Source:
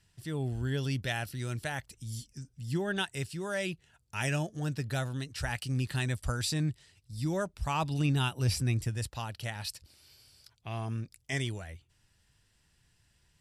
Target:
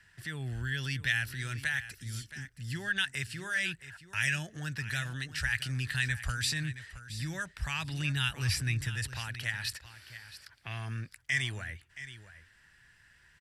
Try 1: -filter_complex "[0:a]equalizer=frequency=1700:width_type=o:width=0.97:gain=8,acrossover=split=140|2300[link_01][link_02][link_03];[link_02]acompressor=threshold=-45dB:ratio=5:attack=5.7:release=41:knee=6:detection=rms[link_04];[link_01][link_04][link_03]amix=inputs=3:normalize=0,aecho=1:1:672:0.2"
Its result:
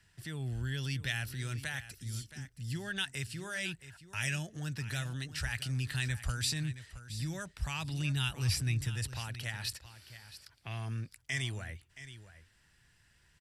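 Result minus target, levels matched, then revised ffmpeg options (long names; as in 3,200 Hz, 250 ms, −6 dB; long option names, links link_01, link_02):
2,000 Hz band −4.0 dB
-filter_complex "[0:a]equalizer=frequency=1700:width_type=o:width=0.97:gain=19,acrossover=split=140|2300[link_01][link_02][link_03];[link_02]acompressor=threshold=-45dB:ratio=5:attack=5.7:release=41:knee=6:detection=rms[link_04];[link_01][link_04][link_03]amix=inputs=3:normalize=0,aecho=1:1:672:0.2"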